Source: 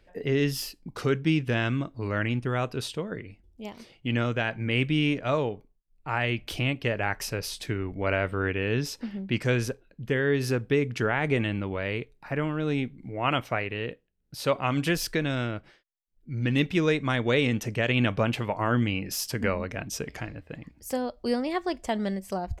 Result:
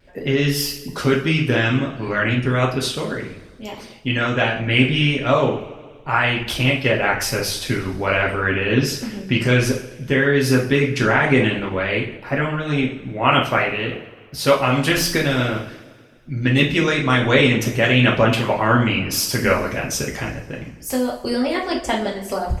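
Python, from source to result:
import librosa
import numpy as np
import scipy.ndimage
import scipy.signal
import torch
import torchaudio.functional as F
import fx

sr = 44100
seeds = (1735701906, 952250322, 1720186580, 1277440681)

y = fx.rev_double_slope(x, sr, seeds[0], early_s=0.55, late_s=2.0, knee_db=-18, drr_db=-3.0)
y = fx.vibrato(y, sr, rate_hz=0.51, depth_cents=14.0)
y = fx.hpss(y, sr, part='percussive', gain_db=8)
y = y * librosa.db_to_amplitude(1.0)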